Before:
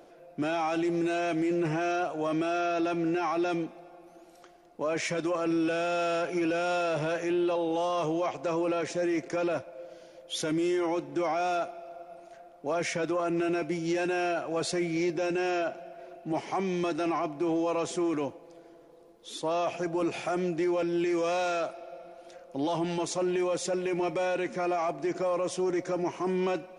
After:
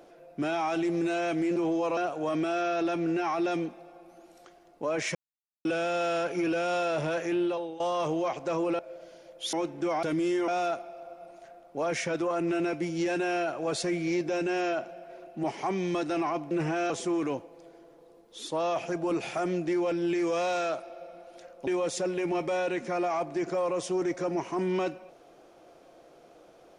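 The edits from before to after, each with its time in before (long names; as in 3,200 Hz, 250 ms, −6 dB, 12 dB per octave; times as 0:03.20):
0:01.56–0:01.95: swap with 0:17.40–0:17.81
0:05.13–0:05.63: silence
0:07.40–0:07.78: fade out, to −17 dB
0:08.77–0:09.68: remove
0:10.42–0:10.87: move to 0:11.37
0:22.58–0:23.35: remove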